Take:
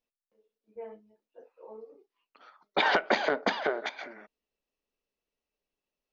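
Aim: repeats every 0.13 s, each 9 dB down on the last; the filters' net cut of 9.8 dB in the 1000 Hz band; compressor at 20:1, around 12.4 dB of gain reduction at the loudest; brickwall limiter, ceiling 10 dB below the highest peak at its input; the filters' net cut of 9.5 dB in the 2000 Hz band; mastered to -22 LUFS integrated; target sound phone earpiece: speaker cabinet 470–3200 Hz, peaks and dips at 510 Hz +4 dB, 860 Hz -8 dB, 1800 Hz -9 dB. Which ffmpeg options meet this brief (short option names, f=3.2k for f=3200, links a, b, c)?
-af "equalizer=f=1k:t=o:g=-6.5,equalizer=f=2k:t=o:g=-4.5,acompressor=threshold=-36dB:ratio=20,alimiter=level_in=8.5dB:limit=-24dB:level=0:latency=1,volume=-8.5dB,highpass=470,equalizer=f=510:t=q:w=4:g=4,equalizer=f=860:t=q:w=4:g=-8,equalizer=f=1.8k:t=q:w=4:g=-9,lowpass=f=3.2k:w=0.5412,lowpass=f=3.2k:w=1.3066,aecho=1:1:130|260|390|520:0.355|0.124|0.0435|0.0152,volume=27.5dB"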